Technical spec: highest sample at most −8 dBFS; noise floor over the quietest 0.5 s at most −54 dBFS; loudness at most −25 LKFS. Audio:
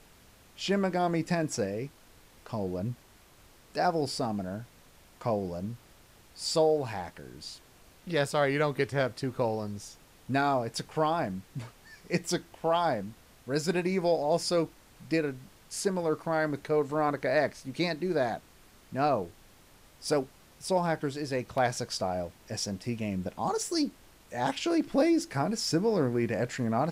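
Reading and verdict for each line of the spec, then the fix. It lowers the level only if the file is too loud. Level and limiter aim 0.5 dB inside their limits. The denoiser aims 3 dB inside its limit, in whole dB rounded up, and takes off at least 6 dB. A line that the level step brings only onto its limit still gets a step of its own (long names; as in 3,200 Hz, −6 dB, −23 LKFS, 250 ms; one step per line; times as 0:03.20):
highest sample −15.0 dBFS: in spec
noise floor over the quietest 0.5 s −57 dBFS: in spec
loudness −30.5 LKFS: in spec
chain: no processing needed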